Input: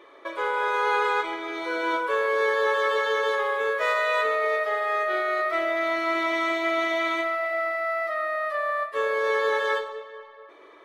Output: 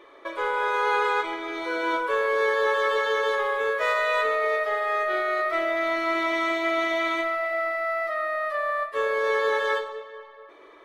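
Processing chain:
low-shelf EQ 81 Hz +9 dB

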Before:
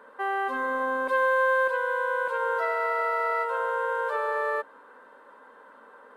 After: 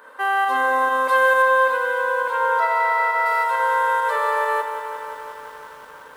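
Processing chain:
spectral tilt +3 dB per octave
convolution reverb RT60 0.55 s, pre-delay 3 ms, DRR 8.5 dB
in parallel at −1 dB: fake sidechain pumping 135 BPM, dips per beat 1, −12 dB, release 86 ms
0:01.42–0:03.26: on the sum: high-shelf EQ 4,600 Hz −11 dB
feedback echo at a low word length 175 ms, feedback 80%, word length 8 bits, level −9.5 dB

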